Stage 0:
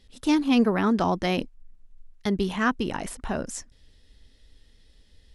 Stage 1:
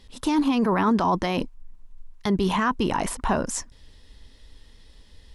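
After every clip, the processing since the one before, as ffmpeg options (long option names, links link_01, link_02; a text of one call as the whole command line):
ffmpeg -i in.wav -af "equalizer=frequency=1000:width=3:gain=9.5,alimiter=limit=-20dB:level=0:latency=1:release=11,volume=6dB" out.wav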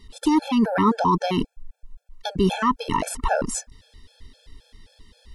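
ffmpeg -i in.wav -af "afftfilt=real='re*gt(sin(2*PI*3.8*pts/sr)*(1-2*mod(floor(b*sr/1024/450),2)),0)':imag='im*gt(sin(2*PI*3.8*pts/sr)*(1-2*mod(floor(b*sr/1024/450),2)),0)':win_size=1024:overlap=0.75,volume=4.5dB" out.wav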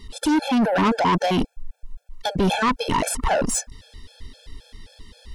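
ffmpeg -i in.wav -af "asoftclip=type=tanh:threshold=-22dB,volume=6.5dB" out.wav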